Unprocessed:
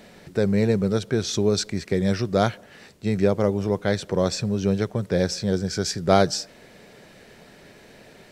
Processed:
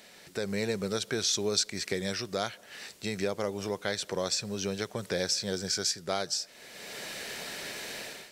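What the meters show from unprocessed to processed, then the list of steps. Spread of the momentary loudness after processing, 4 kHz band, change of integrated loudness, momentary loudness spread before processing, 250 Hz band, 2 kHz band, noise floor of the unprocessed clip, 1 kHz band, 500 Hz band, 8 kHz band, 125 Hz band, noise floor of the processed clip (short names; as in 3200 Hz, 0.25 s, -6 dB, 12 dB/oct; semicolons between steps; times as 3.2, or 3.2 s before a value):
11 LU, 0.0 dB, -8.5 dB, 6 LU, -13.0 dB, -3.0 dB, -50 dBFS, -10.0 dB, -10.0 dB, +1.0 dB, -15.5 dB, -54 dBFS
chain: low shelf 260 Hz -11.5 dB; AGC gain up to 16 dB; high shelf 2100 Hz +10.5 dB; compressor 2:1, threshold -27 dBFS, peak gain reduction 13.5 dB; gain -8 dB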